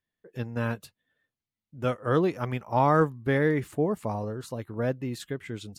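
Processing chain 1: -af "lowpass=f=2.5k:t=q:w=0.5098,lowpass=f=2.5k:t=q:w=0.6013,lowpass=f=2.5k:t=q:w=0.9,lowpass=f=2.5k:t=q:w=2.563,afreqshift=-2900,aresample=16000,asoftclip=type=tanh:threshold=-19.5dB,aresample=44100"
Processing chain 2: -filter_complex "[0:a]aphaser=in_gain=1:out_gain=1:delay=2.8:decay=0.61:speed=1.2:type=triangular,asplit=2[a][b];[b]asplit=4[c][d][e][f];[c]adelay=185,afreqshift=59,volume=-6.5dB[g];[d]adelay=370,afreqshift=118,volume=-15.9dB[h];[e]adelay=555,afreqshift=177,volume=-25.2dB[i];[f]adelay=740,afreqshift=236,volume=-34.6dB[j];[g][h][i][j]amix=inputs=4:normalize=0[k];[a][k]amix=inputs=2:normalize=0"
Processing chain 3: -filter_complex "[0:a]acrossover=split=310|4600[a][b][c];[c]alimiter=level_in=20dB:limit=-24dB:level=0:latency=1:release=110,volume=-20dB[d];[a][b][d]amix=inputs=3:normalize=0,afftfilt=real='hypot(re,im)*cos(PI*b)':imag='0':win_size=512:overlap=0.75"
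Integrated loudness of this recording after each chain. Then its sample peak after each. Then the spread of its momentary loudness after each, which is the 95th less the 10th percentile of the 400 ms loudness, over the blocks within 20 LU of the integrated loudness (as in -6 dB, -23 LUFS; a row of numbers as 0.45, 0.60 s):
-27.5, -24.5, -32.5 LUFS; -18.0, -7.0, -14.5 dBFS; 10, 15, 15 LU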